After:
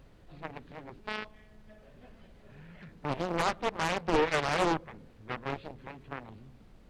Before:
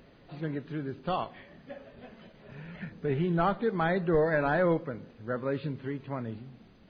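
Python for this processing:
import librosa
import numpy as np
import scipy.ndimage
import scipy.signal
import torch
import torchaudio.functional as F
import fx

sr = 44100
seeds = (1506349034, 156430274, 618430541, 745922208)

y = fx.robotise(x, sr, hz=214.0, at=(1.0, 1.83))
y = fx.dmg_noise_colour(y, sr, seeds[0], colour='brown', level_db=-47.0)
y = fx.cheby_harmonics(y, sr, harmonics=(7,), levels_db=(-13,), full_scale_db=-15.5)
y = fx.doppler_dist(y, sr, depth_ms=0.87)
y = F.gain(torch.from_numpy(y), -1.5).numpy()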